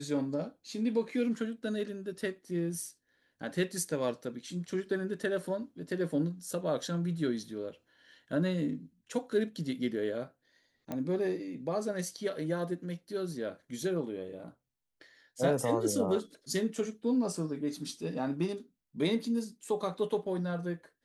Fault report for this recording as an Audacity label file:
10.920000	10.920000	click −23 dBFS

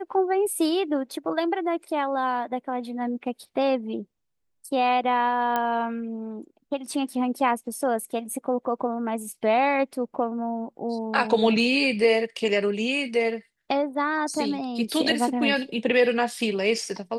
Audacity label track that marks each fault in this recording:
5.560000	5.560000	click −12 dBFS

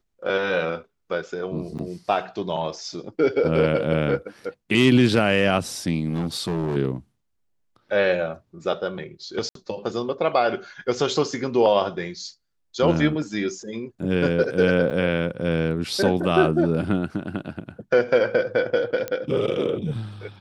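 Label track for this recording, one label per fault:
1.780000	1.790000	drop-out 7.9 ms
6.100000	6.770000	clipping −20.5 dBFS
9.490000	9.550000	drop-out 63 ms
14.900000	14.910000	drop-out 6.7 ms
19.080000	19.080000	click −13 dBFS

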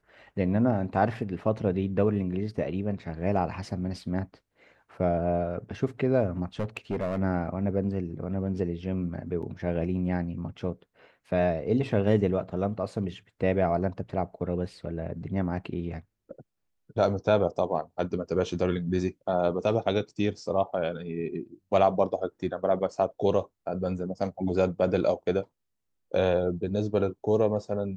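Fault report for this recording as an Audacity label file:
6.600000	7.180000	clipping −24.5 dBFS
9.420000	9.430000	drop-out 7.1 ms

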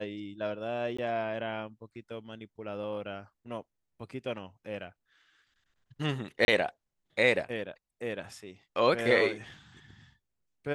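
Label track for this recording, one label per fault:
0.970000	0.980000	drop-out 15 ms
6.450000	6.480000	drop-out 31 ms

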